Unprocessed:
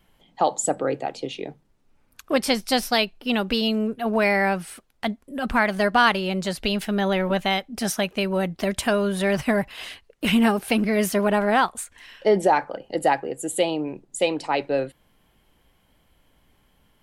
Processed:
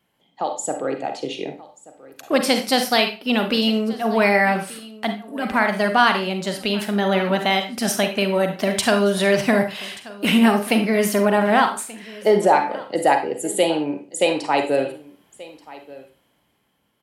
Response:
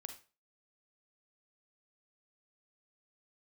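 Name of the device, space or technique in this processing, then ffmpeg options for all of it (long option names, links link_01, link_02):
far laptop microphone: -filter_complex "[1:a]atrim=start_sample=2205[link_01];[0:a][link_01]afir=irnorm=-1:irlink=0,highpass=130,dynaudnorm=framelen=110:gausssize=17:maxgain=9dB,asettb=1/sr,asplit=3[link_02][link_03][link_04];[link_02]atrim=end=8.774[link_05];[link_03]atrim=start=8.77:end=9.78,asetpts=PTS-STARTPTS,afade=type=in:duration=0.004:curve=qsin,afade=type=out:start_time=1.006:duration=0.004:curve=qsin,equalizer=frequency=4700:width_type=o:width=1.2:gain=5[link_06];[link_04]atrim=start=9.776[link_07];[link_05][link_06]acrossfade=duration=0.004:curve1=hsin:curve2=qsin[link_08];[link_08][link_07]acrossfade=duration=0.004:curve1=qsin:curve2=hsin,aecho=1:1:1182:0.1"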